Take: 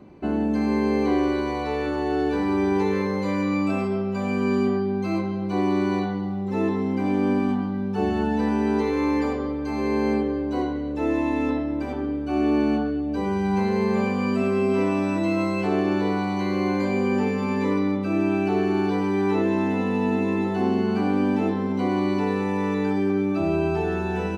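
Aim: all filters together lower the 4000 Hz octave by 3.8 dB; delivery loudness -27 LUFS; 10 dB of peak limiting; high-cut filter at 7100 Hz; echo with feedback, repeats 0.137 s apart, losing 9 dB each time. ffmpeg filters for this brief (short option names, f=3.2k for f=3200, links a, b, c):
-af "lowpass=7.1k,equalizer=f=4k:t=o:g=-4.5,alimiter=limit=-22dB:level=0:latency=1,aecho=1:1:137|274|411|548:0.355|0.124|0.0435|0.0152,volume=2dB"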